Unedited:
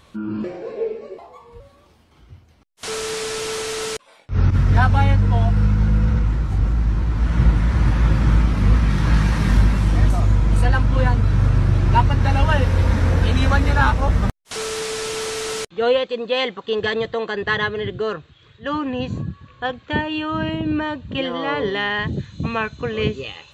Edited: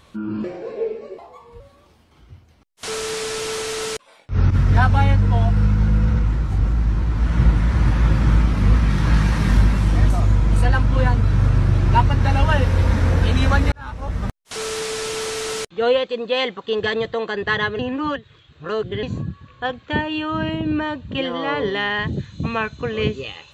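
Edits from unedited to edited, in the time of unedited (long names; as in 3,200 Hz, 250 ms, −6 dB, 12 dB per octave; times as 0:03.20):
0:13.72–0:14.68: fade in
0:17.79–0:19.03: reverse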